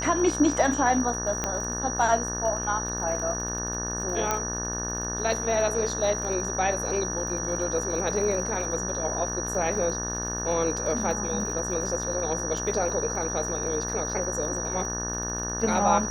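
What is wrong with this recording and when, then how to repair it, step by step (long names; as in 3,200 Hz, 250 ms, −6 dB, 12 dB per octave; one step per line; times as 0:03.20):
mains buzz 60 Hz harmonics 30 −34 dBFS
surface crackle 55 per second −35 dBFS
whistle 5,800 Hz −31 dBFS
0:01.44: click −12 dBFS
0:04.31: click −10 dBFS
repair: click removal
hum removal 60 Hz, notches 30
notch filter 5,800 Hz, Q 30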